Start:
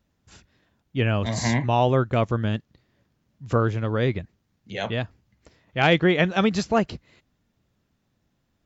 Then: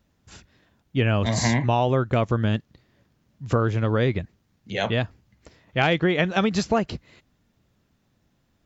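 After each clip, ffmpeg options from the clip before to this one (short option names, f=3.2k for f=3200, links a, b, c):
-af "acompressor=threshold=-21dB:ratio=6,volume=4dB"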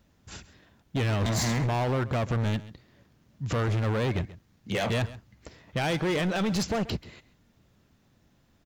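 -af "alimiter=limit=-17.5dB:level=0:latency=1:release=20,asoftclip=type=hard:threshold=-27dB,aecho=1:1:134:0.133,volume=3dB"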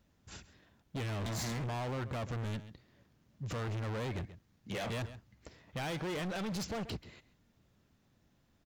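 -af "volume=29dB,asoftclip=hard,volume=-29dB,volume=-6.5dB"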